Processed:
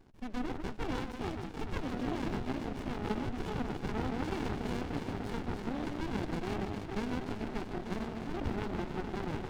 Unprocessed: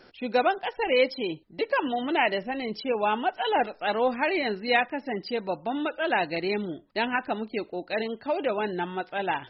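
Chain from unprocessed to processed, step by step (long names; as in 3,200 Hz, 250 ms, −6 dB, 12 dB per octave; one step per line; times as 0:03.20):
high-pass filter 200 Hz 24 dB per octave
brickwall limiter −18.5 dBFS, peak gain reduction 9.5 dB
delay that swaps between a low-pass and a high-pass 149 ms, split 1,400 Hz, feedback 88%, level −4 dB
windowed peak hold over 65 samples
level −5.5 dB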